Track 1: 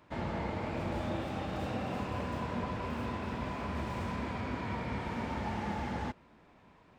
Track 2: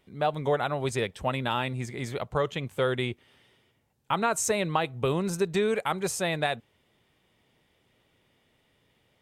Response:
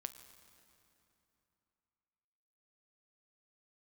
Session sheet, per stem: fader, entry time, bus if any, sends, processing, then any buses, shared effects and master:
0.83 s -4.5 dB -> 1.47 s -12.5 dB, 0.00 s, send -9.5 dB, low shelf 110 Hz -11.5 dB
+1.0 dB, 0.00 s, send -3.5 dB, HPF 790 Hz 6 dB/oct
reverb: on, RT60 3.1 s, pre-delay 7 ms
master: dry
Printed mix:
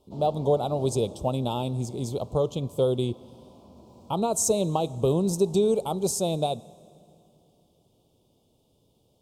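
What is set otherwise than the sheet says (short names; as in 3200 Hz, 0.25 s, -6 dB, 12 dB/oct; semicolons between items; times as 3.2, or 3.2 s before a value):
stem 2: missing HPF 790 Hz 6 dB/oct; master: extra Butterworth band-stop 1800 Hz, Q 0.52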